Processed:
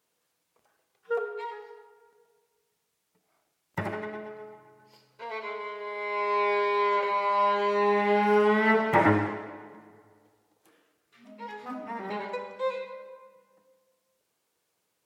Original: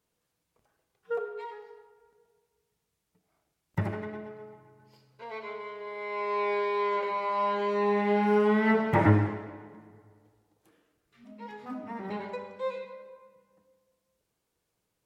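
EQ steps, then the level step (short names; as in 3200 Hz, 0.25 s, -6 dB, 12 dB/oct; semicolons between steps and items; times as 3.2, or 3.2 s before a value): HPF 440 Hz 6 dB/oct; +5.0 dB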